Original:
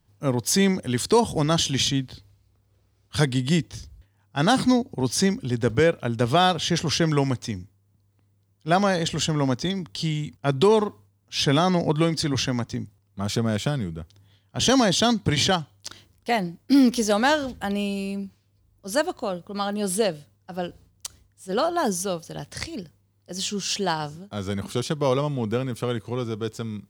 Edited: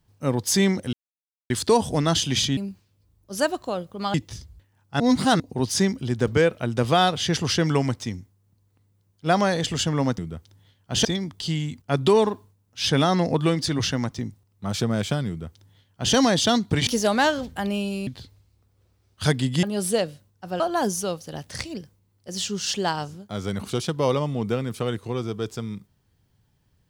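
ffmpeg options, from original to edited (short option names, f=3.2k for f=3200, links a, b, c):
-filter_complex "[0:a]asplit=12[a][b][c][d][e][f][g][h][i][j][k][l];[a]atrim=end=0.93,asetpts=PTS-STARTPTS,afade=t=out:st=0.926:d=0.004:c=hsin,apad=pad_dur=0.57[m];[b]atrim=start=0.93:end=2.002,asetpts=PTS-STARTPTS,afade=t=in:d=0.004:c=hsin[n];[c]atrim=start=18.118:end=19.692[o];[d]atrim=start=3.558:end=4.422[p];[e]atrim=start=4.418:end=4.822,asetpts=PTS-STARTPTS,areverse[q];[f]atrim=start=4.818:end=9.602[r];[g]atrim=start=13.828:end=14.702[s];[h]atrim=start=9.598:end=15.422[t];[i]atrim=start=16.918:end=18.122[u];[j]atrim=start=1.998:end=3.562[v];[k]atrim=start=19.688:end=20.662[w];[l]atrim=start=21.618[x];[m][n]concat=n=2:v=0:a=1[y];[y][o]acrossfade=d=0.004:c1=hsin:c2=hsin[z];[z][p]acrossfade=d=0.004:c1=hsin:c2=hsin[aa];[aa][q]acrossfade=d=0.004:c1=hsin:c2=hsin[ab];[ab][r]acrossfade=d=0.004:c1=hsin:c2=hsin[ac];[ac][s]acrossfade=d=0.004:c1=hsin:c2=hsin[ad];[ad][t]acrossfade=d=0.004:c1=hsin:c2=hsin[ae];[ae][u]acrossfade=d=0.004:c1=hsin:c2=hsin[af];[af][v]acrossfade=d=0.004:c1=hsin:c2=hsin[ag];[ag][w]acrossfade=d=0.004:c1=hsin:c2=hsin[ah];[ah][x]acrossfade=d=0.004:c1=hsin:c2=hsin"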